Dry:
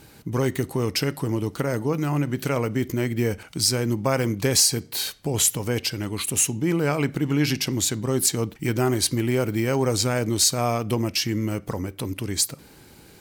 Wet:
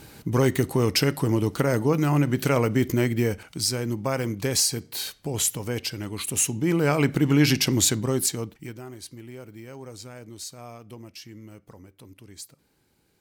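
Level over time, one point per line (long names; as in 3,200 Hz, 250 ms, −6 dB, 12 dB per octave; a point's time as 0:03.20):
0:02.99 +2.5 dB
0:03.59 −4 dB
0:06.14 −4 dB
0:07.15 +3 dB
0:07.89 +3 dB
0:08.57 −8.5 dB
0:08.82 −18.5 dB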